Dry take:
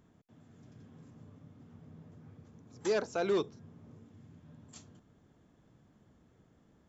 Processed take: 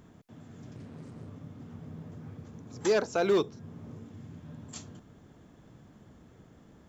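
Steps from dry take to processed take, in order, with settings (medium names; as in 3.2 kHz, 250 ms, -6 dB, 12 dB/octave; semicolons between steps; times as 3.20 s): in parallel at -1 dB: compression, threshold -47 dBFS, peak gain reduction 19 dB; on the sum: short-mantissa float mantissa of 6-bit; 0.75–1.29 s: loudspeaker Doppler distortion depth 0.71 ms; trim +4 dB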